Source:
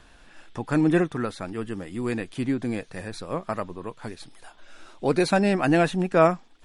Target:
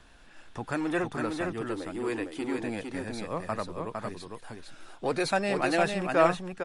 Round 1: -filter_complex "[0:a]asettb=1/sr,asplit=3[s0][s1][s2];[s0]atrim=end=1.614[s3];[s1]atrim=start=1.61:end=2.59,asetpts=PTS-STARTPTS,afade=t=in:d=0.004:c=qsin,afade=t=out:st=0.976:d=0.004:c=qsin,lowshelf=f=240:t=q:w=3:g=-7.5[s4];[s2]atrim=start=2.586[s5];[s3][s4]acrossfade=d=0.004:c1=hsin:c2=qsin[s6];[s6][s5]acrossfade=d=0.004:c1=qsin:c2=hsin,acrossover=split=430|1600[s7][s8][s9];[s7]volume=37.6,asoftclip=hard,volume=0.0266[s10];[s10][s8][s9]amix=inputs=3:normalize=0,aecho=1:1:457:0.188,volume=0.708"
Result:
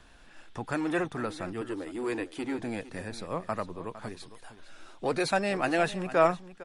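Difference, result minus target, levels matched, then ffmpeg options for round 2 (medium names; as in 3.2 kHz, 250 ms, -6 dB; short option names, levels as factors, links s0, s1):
echo-to-direct -10.5 dB
-filter_complex "[0:a]asettb=1/sr,asplit=3[s0][s1][s2];[s0]atrim=end=1.614[s3];[s1]atrim=start=1.61:end=2.59,asetpts=PTS-STARTPTS,afade=t=in:d=0.004:c=qsin,afade=t=out:st=0.976:d=0.004:c=qsin,lowshelf=f=240:t=q:w=3:g=-7.5[s4];[s2]atrim=start=2.586[s5];[s3][s4]acrossfade=d=0.004:c1=hsin:c2=qsin[s6];[s6][s5]acrossfade=d=0.004:c1=qsin:c2=hsin,acrossover=split=430|1600[s7][s8][s9];[s7]volume=37.6,asoftclip=hard,volume=0.0266[s10];[s10][s8][s9]amix=inputs=3:normalize=0,aecho=1:1:457:0.631,volume=0.708"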